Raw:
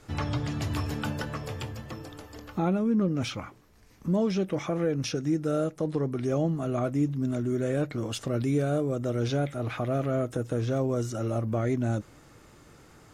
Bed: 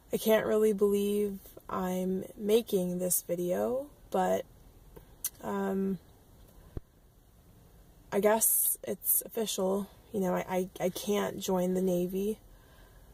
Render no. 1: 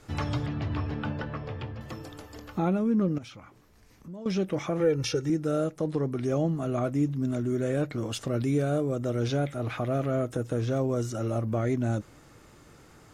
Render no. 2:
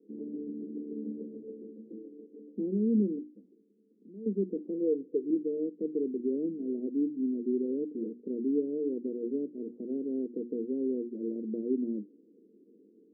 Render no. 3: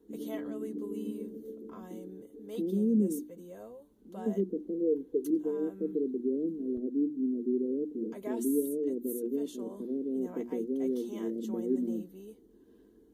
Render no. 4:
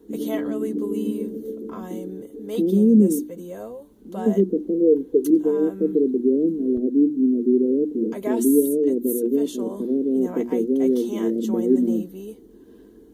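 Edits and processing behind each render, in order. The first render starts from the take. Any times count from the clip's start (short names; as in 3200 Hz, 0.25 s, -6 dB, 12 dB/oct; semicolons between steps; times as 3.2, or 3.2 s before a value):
0.46–1.81 air absorption 270 m; 3.18–4.26 compressor 2:1, threshold -52 dBFS; 4.8–5.3 comb 2.2 ms, depth 83%
Chebyshev band-pass 200–460 Hz, order 4; notches 60/120/180/240/300/360 Hz
add bed -16.5 dB
gain +12 dB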